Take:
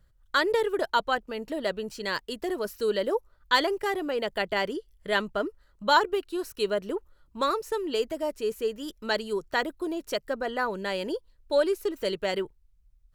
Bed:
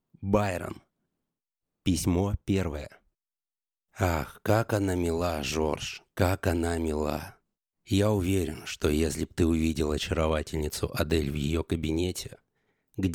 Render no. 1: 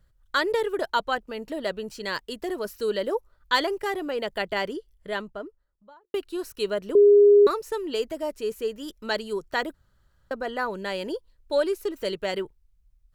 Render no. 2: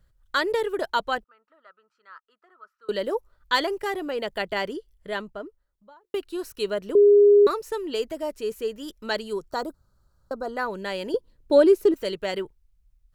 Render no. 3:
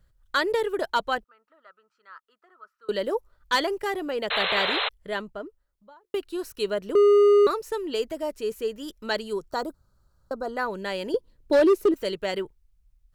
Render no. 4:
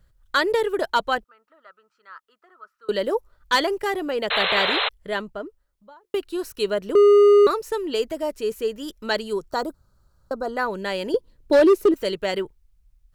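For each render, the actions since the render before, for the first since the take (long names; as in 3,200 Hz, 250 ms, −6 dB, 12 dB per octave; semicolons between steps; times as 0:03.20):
0:04.56–0:06.14: fade out and dull; 0:06.95–0:07.47: beep over 409 Hz −11 dBFS; 0:09.74–0:10.31: fill with room tone
0:01.24–0:02.89: resonant band-pass 1,300 Hz, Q 15; 0:09.50–0:10.57: flat-topped bell 2,400 Hz −15.5 dB 1.2 octaves; 0:11.14–0:11.94: parametric band 240 Hz +14 dB 2.4 octaves
gain into a clipping stage and back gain 14.5 dB; 0:04.30–0:04.89: sound drawn into the spectrogram noise 420–4,200 Hz −26 dBFS
level +3.5 dB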